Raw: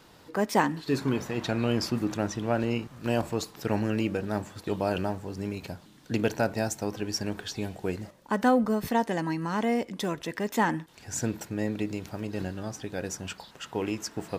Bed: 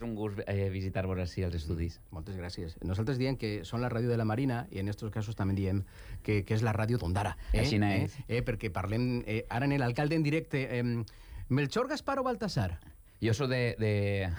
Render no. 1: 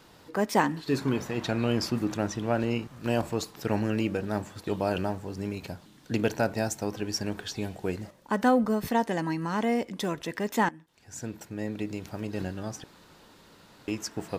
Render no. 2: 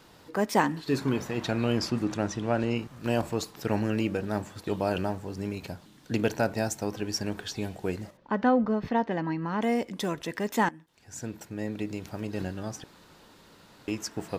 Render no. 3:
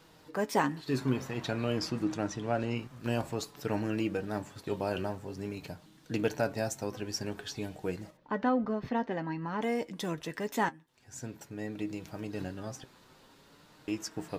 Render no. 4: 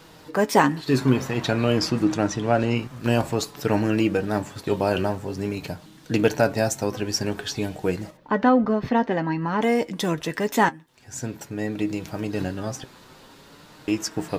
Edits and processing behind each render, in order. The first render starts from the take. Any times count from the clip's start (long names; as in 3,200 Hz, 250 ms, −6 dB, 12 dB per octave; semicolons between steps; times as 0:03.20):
0:10.69–0:12.24: fade in, from −19 dB; 0:12.84–0:13.88: fill with room tone
0:01.79–0:02.77: low-pass filter 10,000 Hz; 0:08.17–0:09.62: high-frequency loss of the air 240 metres
flanger 0.5 Hz, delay 6.1 ms, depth 1.9 ms, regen +55%
level +10.5 dB